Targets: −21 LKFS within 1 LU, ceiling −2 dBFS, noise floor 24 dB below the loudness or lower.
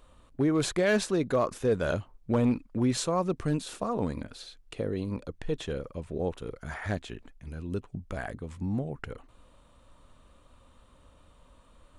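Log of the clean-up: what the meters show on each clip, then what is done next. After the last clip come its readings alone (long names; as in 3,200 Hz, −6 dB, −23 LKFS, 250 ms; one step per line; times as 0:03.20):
share of clipped samples 0.3%; peaks flattened at −18.0 dBFS; integrated loudness −31.0 LKFS; sample peak −18.0 dBFS; target loudness −21.0 LKFS
→ clipped peaks rebuilt −18 dBFS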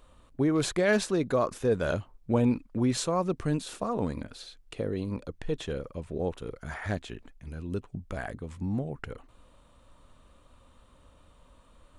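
share of clipped samples 0.0%; integrated loudness −30.5 LKFS; sample peak −12.5 dBFS; target loudness −21.0 LKFS
→ level +9.5 dB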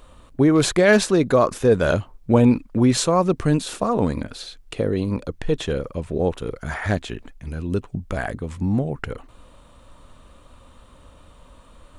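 integrated loudness −21.0 LKFS; sample peak −3.0 dBFS; background noise floor −50 dBFS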